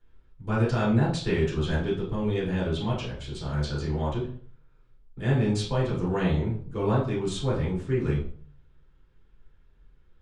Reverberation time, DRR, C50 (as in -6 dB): 0.50 s, -7.5 dB, 6.0 dB